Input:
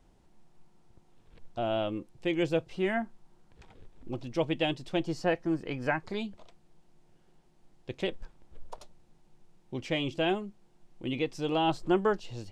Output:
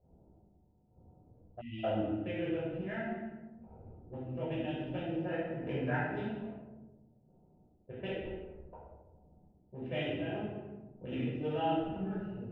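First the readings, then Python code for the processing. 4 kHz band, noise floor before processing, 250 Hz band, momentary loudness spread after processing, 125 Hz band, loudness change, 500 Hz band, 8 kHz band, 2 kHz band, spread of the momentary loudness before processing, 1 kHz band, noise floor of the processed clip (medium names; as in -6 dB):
-11.0 dB, -63 dBFS, -4.0 dB, 19 LU, -1.0 dB, -5.5 dB, -6.0 dB, under -25 dB, -6.0 dB, 15 LU, -5.5 dB, -67 dBFS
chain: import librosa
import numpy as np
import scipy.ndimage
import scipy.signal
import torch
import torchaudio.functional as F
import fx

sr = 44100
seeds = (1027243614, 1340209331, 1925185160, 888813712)

y = fx.wiener(x, sr, points=25)
y = fx.chopper(y, sr, hz=1.1, depth_pct=60, duty_pct=40)
y = fx.notch_comb(y, sr, f0_hz=1100.0)
y = fx.over_compress(y, sr, threshold_db=-37.0, ratio=-1.0)
y = scipy.signal.savgol_filter(y, 25, 4, mode='constant')
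y = fx.peak_eq(y, sr, hz=77.0, db=14.0, octaves=1.0)
y = fx.room_shoebox(y, sr, seeds[0], volume_m3=770.0, walls='mixed', distance_m=5.6)
y = fx.spec_erase(y, sr, start_s=1.61, length_s=0.23, low_hz=330.0, high_hz=1900.0)
y = fx.low_shelf(y, sr, hz=290.0, db=-10.5)
y = y + 10.0 ** (-23.5 / 20.0) * np.pad(y, (int(206 * sr / 1000.0), 0))[:len(y)]
y = fx.env_lowpass(y, sr, base_hz=580.0, full_db=-28.0)
y = y * 10.0 ** (-6.5 / 20.0)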